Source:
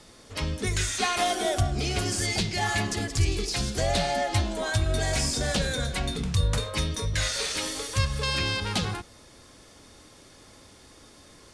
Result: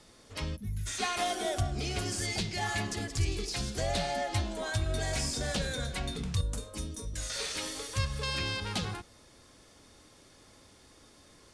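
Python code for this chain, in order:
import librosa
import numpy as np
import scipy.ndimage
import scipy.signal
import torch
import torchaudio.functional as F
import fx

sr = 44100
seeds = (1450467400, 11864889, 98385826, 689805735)

y = fx.spec_box(x, sr, start_s=0.56, length_s=0.31, low_hz=250.0, high_hz=10000.0, gain_db=-22)
y = fx.graphic_eq(y, sr, hz=(125, 250, 500, 1000, 2000, 4000, 8000), db=(-12, 5, -5, -6, -11, -8, 3), at=(6.41, 7.3))
y = y * 10.0 ** (-6.0 / 20.0)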